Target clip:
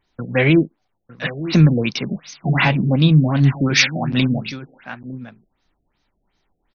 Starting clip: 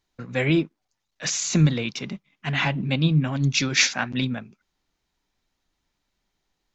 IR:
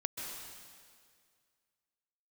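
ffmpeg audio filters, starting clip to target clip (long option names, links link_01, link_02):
-filter_complex "[0:a]aecho=1:1:905:0.188,asplit=2[link_01][link_02];[link_02]alimiter=limit=-15dB:level=0:latency=1,volume=3dB[link_03];[link_01][link_03]amix=inputs=2:normalize=0,afftfilt=real='re*lt(b*sr/1024,730*pow(6700/730,0.5+0.5*sin(2*PI*2.7*pts/sr)))':imag='im*lt(b*sr/1024,730*pow(6700/730,0.5+0.5*sin(2*PI*2.7*pts/sr)))':win_size=1024:overlap=0.75,volume=1dB"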